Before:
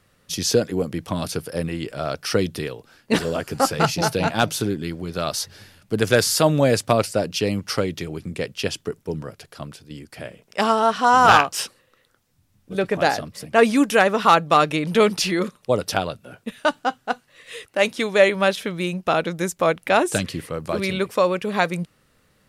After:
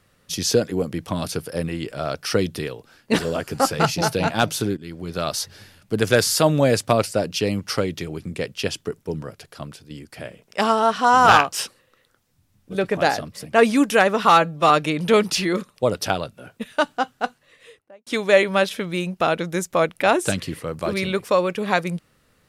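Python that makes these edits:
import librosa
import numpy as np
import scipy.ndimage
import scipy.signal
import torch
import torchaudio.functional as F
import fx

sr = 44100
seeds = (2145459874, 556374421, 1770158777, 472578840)

y = fx.studio_fade_out(x, sr, start_s=17.09, length_s=0.84)
y = fx.edit(y, sr, fx.fade_in_from(start_s=4.77, length_s=0.34, floor_db=-14.5),
    fx.stretch_span(start_s=14.29, length_s=0.27, factor=1.5), tone=tone)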